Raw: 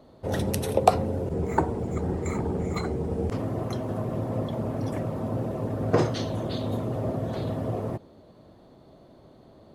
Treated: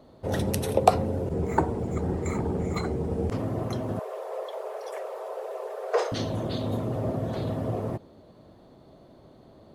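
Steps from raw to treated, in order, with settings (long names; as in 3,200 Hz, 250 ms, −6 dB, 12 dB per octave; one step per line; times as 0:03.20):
0:03.99–0:06.12: Butterworth high-pass 400 Hz 96 dB per octave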